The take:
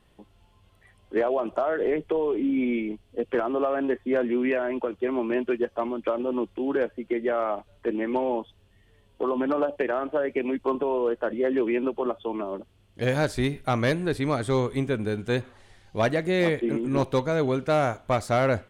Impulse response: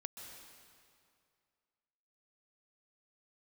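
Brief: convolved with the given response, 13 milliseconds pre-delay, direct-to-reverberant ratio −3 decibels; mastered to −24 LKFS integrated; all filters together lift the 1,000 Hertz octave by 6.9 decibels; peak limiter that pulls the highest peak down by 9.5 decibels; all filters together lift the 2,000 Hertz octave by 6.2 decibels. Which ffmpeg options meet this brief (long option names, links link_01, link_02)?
-filter_complex "[0:a]equalizer=frequency=1000:width_type=o:gain=8,equalizer=frequency=2000:width_type=o:gain=5,alimiter=limit=-16.5dB:level=0:latency=1,asplit=2[link_01][link_02];[1:a]atrim=start_sample=2205,adelay=13[link_03];[link_02][link_03]afir=irnorm=-1:irlink=0,volume=6dB[link_04];[link_01][link_04]amix=inputs=2:normalize=0,volume=-1.5dB"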